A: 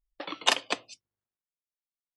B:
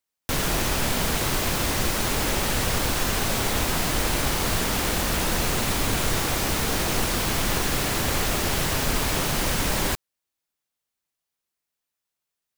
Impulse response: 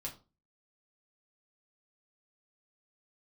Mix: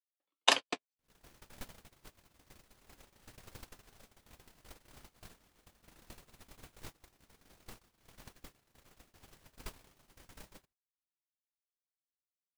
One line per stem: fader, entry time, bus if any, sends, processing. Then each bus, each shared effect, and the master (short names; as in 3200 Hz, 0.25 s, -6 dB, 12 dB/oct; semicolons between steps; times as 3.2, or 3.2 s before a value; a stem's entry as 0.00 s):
+2.5 dB, 0.00 s, no send, no echo send, flange 1.9 Hz, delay 6.9 ms, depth 5.3 ms, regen +79%
-11.0 dB, 0.70 s, no send, echo send -6.5 dB, dry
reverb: off
echo: echo 79 ms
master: gate -29 dBFS, range -53 dB